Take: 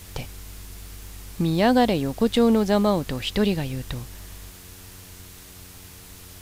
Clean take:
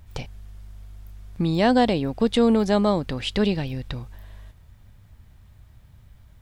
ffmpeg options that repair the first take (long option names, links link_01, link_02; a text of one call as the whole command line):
ffmpeg -i in.wav -af "bandreject=frequency=91.1:width_type=h:width=4,bandreject=frequency=182.2:width_type=h:width=4,bandreject=frequency=273.3:width_type=h:width=4,bandreject=frequency=364.4:width_type=h:width=4,bandreject=frequency=455.5:width_type=h:width=4,afwtdn=0.0056" out.wav